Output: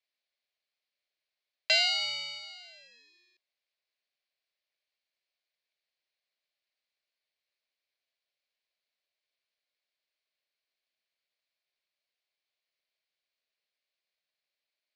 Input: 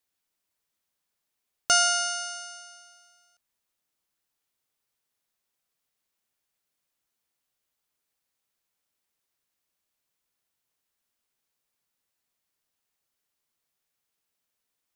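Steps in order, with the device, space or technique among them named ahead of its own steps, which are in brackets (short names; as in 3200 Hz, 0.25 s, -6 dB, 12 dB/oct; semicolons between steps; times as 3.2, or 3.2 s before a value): voice changer toy (ring modulator with a swept carrier 1300 Hz, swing 20%, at 0.45 Hz; speaker cabinet 590–4700 Hz, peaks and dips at 600 Hz +6 dB, 890 Hz -10 dB, 1300 Hz -8 dB, 2300 Hz +5 dB, 4300 Hz +6 dB)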